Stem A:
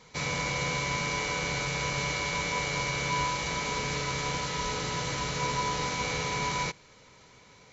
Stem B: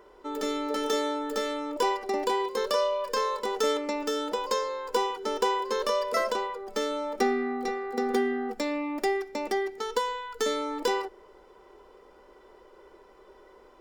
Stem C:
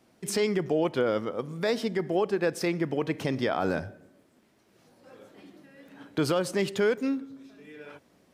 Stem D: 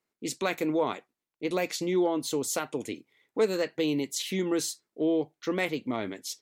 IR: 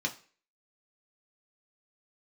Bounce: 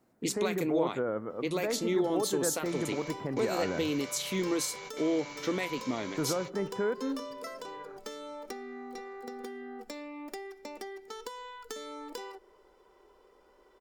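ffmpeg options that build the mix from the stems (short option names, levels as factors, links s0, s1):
-filter_complex "[0:a]highpass=f=280:p=1,adelay=2500,volume=0.2[s0];[1:a]acompressor=threshold=0.0282:ratio=6,adelay=1300,volume=0.398[s1];[2:a]lowpass=f=1700:w=0.5412,lowpass=f=1700:w=1.3066,volume=0.501[s2];[3:a]volume=1.26,asplit=2[s3][s4];[s4]apad=whole_len=450996[s5];[s0][s5]sidechaingate=range=0.0355:threshold=0.00224:ratio=16:detection=peak[s6];[s1][s3]amix=inputs=2:normalize=0,highshelf=f=4500:g=5.5,alimiter=limit=0.0794:level=0:latency=1:release=441,volume=1[s7];[s6][s2][s7]amix=inputs=3:normalize=0"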